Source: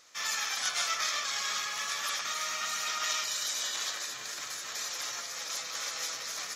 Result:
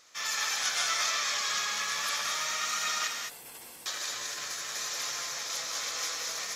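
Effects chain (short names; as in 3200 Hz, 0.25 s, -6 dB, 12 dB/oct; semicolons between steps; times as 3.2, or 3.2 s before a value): 3.07–3.86 spectral gate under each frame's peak -20 dB weak; non-linear reverb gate 0.24 s rising, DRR 2 dB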